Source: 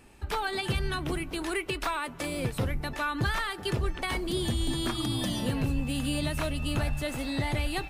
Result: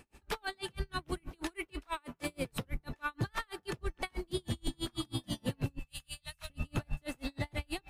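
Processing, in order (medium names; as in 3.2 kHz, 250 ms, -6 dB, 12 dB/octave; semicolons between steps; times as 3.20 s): peak limiter -24 dBFS, peak gain reduction 4 dB; 5.79–6.50 s: amplifier tone stack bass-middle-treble 10-0-10; logarithmic tremolo 6.2 Hz, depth 39 dB; trim +1 dB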